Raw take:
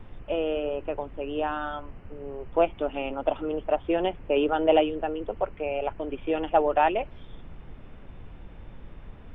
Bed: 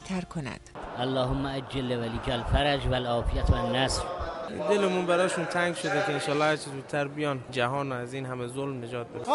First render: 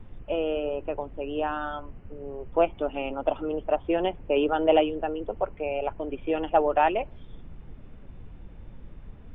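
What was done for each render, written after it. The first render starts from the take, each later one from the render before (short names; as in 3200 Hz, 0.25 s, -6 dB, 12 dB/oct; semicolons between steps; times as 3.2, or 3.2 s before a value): denoiser 6 dB, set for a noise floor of -46 dBFS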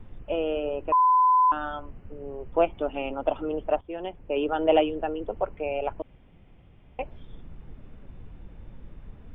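0.92–1.52 bleep 1010 Hz -16 dBFS; 3.81–4.75 fade in, from -14 dB; 6.02–6.99 room tone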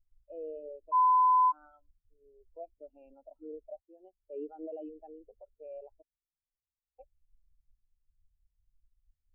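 limiter -20 dBFS, peak gain reduction 11 dB; spectral expander 2.5:1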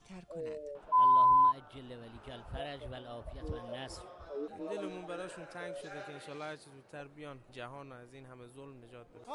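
add bed -18 dB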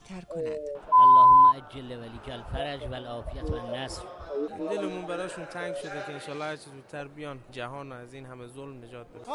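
gain +8.5 dB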